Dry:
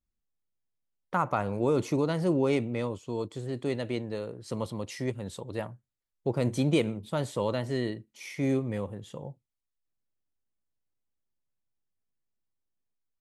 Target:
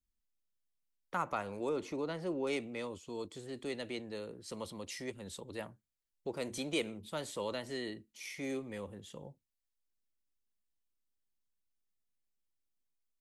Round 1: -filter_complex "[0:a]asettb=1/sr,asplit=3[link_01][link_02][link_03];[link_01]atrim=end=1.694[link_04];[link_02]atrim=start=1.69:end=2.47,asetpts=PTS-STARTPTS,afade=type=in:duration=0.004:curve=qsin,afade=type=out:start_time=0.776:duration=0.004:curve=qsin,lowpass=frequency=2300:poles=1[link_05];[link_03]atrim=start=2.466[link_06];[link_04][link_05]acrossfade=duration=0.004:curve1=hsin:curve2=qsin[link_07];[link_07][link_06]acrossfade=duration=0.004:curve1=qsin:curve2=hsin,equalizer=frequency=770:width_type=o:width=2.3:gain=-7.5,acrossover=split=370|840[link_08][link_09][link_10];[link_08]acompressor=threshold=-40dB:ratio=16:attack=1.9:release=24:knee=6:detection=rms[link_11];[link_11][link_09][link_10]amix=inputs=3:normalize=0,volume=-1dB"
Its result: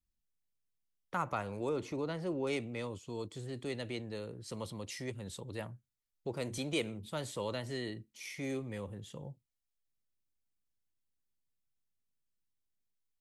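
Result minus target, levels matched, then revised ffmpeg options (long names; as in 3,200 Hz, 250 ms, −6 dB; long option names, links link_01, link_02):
125 Hz band +7.0 dB
-filter_complex "[0:a]asettb=1/sr,asplit=3[link_01][link_02][link_03];[link_01]atrim=end=1.694[link_04];[link_02]atrim=start=1.69:end=2.47,asetpts=PTS-STARTPTS,afade=type=in:duration=0.004:curve=qsin,afade=type=out:start_time=0.776:duration=0.004:curve=qsin,lowpass=frequency=2300:poles=1[link_05];[link_03]atrim=start=2.466[link_06];[link_04][link_05]acrossfade=duration=0.004:curve1=hsin:curve2=qsin[link_07];[link_07][link_06]acrossfade=duration=0.004:curve1=qsin:curve2=hsin,equalizer=frequency=770:width_type=o:width=2.3:gain=-7.5,acrossover=split=370|840[link_08][link_09][link_10];[link_08]acompressor=threshold=-40dB:ratio=16:attack=1.9:release=24:knee=6:detection=rms,equalizer=frequency=120:width_type=o:width=0.67:gain=-11.5[link_11];[link_11][link_09][link_10]amix=inputs=3:normalize=0,volume=-1dB"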